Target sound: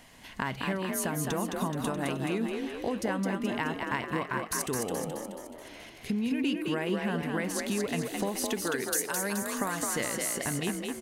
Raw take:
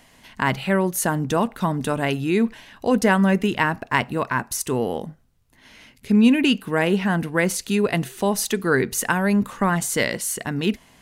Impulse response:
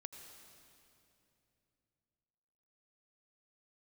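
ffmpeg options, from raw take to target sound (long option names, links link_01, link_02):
-filter_complex "[0:a]asettb=1/sr,asplit=3[link_01][link_02][link_03];[link_01]atrim=end=8.624[link_04];[link_02]atrim=start=8.62:end=9.82,asetpts=PTS-STARTPTS,afade=type=in:duration=0.004:curve=qsin,afade=type=out:start_time=1.196:duration=0.004:curve=qsin,bass=frequency=250:gain=-9,treble=frequency=4000:gain=13[link_05];[link_03]atrim=start=9.816[link_06];[link_04][link_05]acrossfade=duration=0.004:curve1=hsin:curve2=qsin[link_07];[link_07][link_06]acrossfade=duration=0.004:curve1=qsin:curve2=hsin,acompressor=threshold=-28dB:ratio=6,asplit=8[link_08][link_09][link_10][link_11][link_12][link_13][link_14][link_15];[link_09]adelay=213,afreqshift=43,volume=-4dB[link_16];[link_10]adelay=426,afreqshift=86,volume=-9.2dB[link_17];[link_11]adelay=639,afreqshift=129,volume=-14.4dB[link_18];[link_12]adelay=852,afreqshift=172,volume=-19.6dB[link_19];[link_13]adelay=1065,afreqshift=215,volume=-24.8dB[link_20];[link_14]adelay=1278,afreqshift=258,volume=-30dB[link_21];[link_15]adelay=1491,afreqshift=301,volume=-35.2dB[link_22];[link_08][link_16][link_17][link_18][link_19][link_20][link_21][link_22]amix=inputs=8:normalize=0,volume=-1.5dB"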